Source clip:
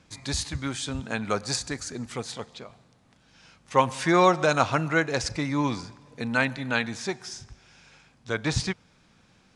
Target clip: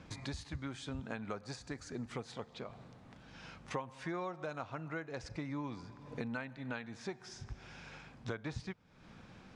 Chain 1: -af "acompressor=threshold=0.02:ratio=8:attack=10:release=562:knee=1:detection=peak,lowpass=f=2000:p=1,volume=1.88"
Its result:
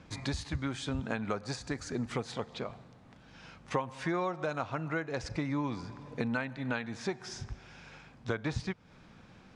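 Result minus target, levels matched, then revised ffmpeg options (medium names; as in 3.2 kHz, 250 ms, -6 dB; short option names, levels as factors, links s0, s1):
compression: peak gain reduction -7.5 dB
-af "acompressor=threshold=0.0075:ratio=8:attack=10:release=562:knee=1:detection=peak,lowpass=f=2000:p=1,volume=1.88"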